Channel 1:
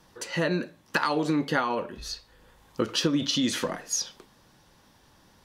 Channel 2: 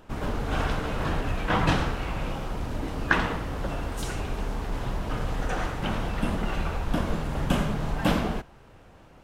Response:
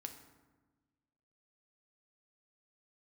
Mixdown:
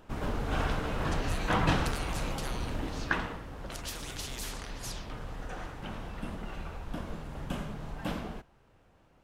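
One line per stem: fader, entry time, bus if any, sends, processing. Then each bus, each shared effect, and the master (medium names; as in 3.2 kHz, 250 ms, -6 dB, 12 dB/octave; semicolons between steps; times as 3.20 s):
+1.0 dB, 0.90 s, no send, level-controlled noise filter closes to 1.1 kHz, open at -21.5 dBFS; amplifier tone stack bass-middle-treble 5-5-5; spectrum-flattening compressor 4:1
2.83 s -3.5 dB -> 3.42 s -11.5 dB, 0.00 s, no send, none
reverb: none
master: none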